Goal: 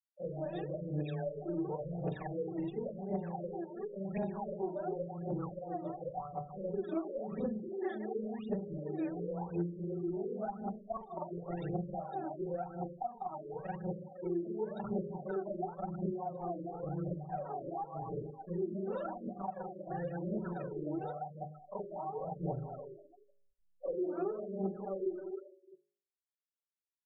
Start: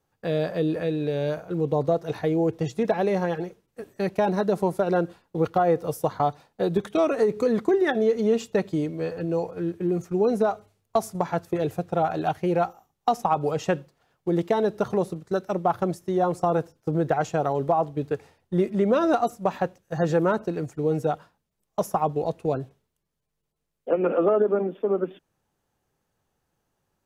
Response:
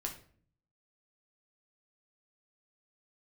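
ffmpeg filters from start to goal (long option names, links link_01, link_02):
-filter_complex "[0:a]afftfilt=real='re':imag='-im':win_size=4096:overlap=0.75,asplit=2[link_01][link_02];[link_02]adelay=153,lowpass=frequency=4100:poles=1,volume=-10.5dB,asplit=2[link_03][link_04];[link_04]adelay=153,lowpass=frequency=4100:poles=1,volume=0.44,asplit=2[link_05][link_06];[link_06]adelay=153,lowpass=frequency=4100:poles=1,volume=0.44,asplit=2[link_07][link_08];[link_08]adelay=153,lowpass=frequency=4100:poles=1,volume=0.44,asplit=2[link_09][link_10];[link_10]adelay=153,lowpass=frequency=4100:poles=1,volume=0.44[link_11];[link_03][link_05][link_07][link_09][link_11]amix=inputs=5:normalize=0[link_12];[link_01][link_12]amix=inputs=2:normalize=0,adynamicequalizer=threshold=0.00708:dfrequency=780:dqfactor=3.2:tfrequency=780:tqfactor=3.2:attack=5:release=100:ratio=0.375:range=3.5:mode=boostabove:tftype=bell,aexciter=amount=13.4:drive=3.7:freq=4500,aecho=1:1:5.3:0.64,acompressor=threshold=-27dB:ratio=8,aphaser=in_gain=1:out_gain=1:delay=3.4:decay=0.79:speed=0.93:type=triangular,afftfilt=real='re*gte(hypot(re,im),0.0112)':imag='im*gte(hypot(re,im),0.0112)':win_size=1024:overlap=0.75,bandreject=frequency=51.07:width_type=h:width=4,bandreject=frequency=102.14:width_type=h:width=4,bandreject=frequency=153.21:width_type=h:width=4,bandreject=frequency=204.28:width_type=h:width=4,bandreject=frequency=255.35:width_type=h:width=4,bandreject=frequency=306.42:width_type=h:width=4,bandreject=frequency=357.49:width_type=h:width=4,bandreject=frequency=408.56:width_type=h:width=4,bandreject=frequency=459.63:width_type=h:width=4,bandreject=frequency=510.7:width_type=h:width=4,bandreject=frequency=561.77:width_type=h:width=4,bandreject=frequency=612.84:width_type=h:width=4,acrossover=split=290|7100[link_13][link_14][link_15];[link_13]acompressor=threshold=-33dB:ratio=4[link_16];[link_14]acompressor=threshold=-35dB:ratio=4[link_17];[link_15]acompressor=threshold=-49dB:ratio=4[link_18];[link_16][link_17][link_18]amix=inputs=3:normalize=0,highshelf=frequency=10000:gain=-8.5,afftfilt=real='re*lt(b*sr/1024,590*pow(3800/590,0.5+0.5*sin(2*PI*1.9*pts/sr)))':imag='im*lt(b*sr/1024,590*pow(3800/590,0.5+0.5*sin(2*PI*1.9*pts/sr)))':win_size=1024:overlap=0.75,volume=-4dB"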